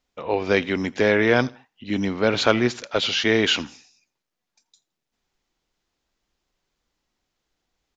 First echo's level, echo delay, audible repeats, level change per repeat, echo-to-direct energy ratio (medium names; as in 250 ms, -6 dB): -24.0 dB, 83 ms, 2, -9.0 dB, -23.5 dB